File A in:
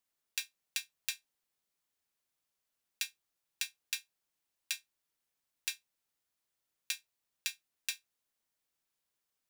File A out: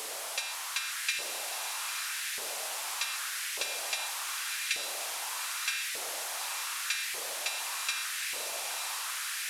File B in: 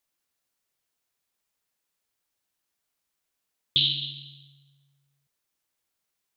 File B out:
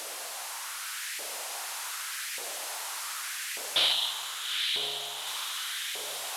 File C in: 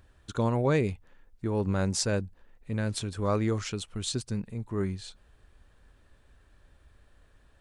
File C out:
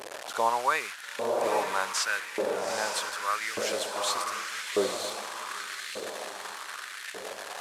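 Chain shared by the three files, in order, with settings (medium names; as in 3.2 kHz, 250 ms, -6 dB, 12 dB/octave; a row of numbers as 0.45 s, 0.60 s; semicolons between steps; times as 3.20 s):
one-bit delta coder 64 kbps, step -34.5 dBFS; echo that smears into a reverb 866 ms, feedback 53%, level -4.5 dB; LFO high-pass saw up 0.84 Hz 460–2000 Hz; trim +3 dB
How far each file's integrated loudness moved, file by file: +8.0 LU, -6.0 LU, -0.5 LU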